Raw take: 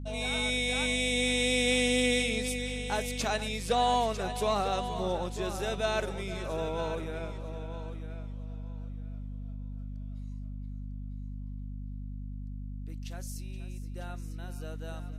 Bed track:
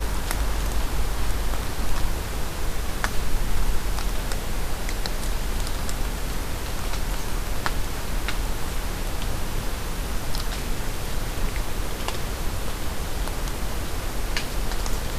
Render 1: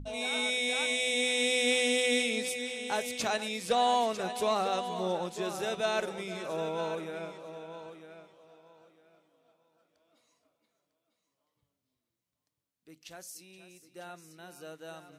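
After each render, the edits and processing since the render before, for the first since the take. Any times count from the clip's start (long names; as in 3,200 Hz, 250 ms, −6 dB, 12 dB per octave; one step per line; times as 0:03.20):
mains-hum notches 50/100/150/200/250 Hz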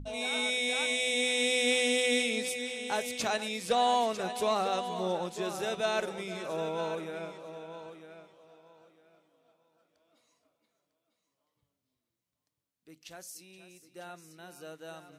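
no processing that can be heard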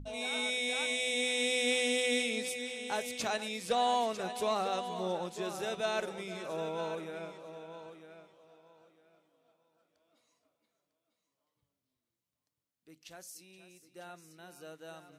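level −3 dB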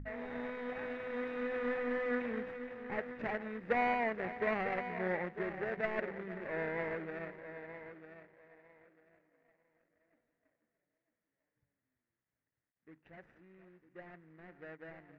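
running median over 41 samples
low-pass with resonance 1,900 Hz, resonance Q 5.4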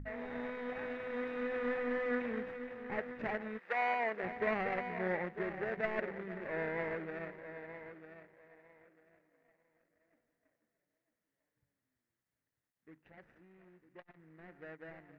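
0:03.57–0:04.22: high-pass filter 1,000 Hz → 250 Hz
0:13.00–0:14.20: saturating transformer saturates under 930 Hz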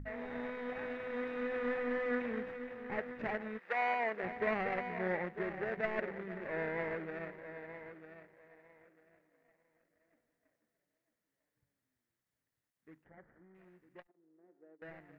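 0:13.04–0:13.55: Savitzky-Golay smoothing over 41 samples
0:14.07–0:14.82: four-pole ladder band-pass 410 Hz, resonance 45%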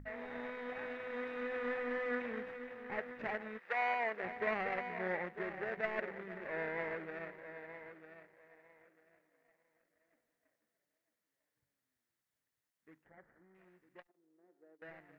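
low-shelf EQ 390 Hz −7 dB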